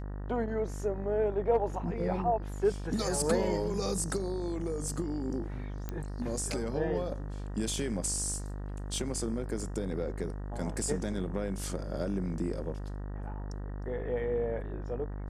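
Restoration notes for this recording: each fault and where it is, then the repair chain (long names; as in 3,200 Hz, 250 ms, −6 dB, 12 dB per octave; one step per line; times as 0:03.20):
mains buzz 50 Hz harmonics 38 −38 dBFS
0:05.89: click −22 dBFS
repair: click removal
hum removal 50 Hz, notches 38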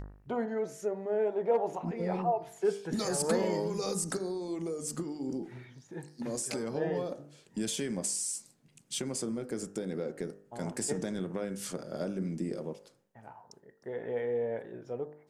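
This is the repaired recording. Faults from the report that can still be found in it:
0:05.89: click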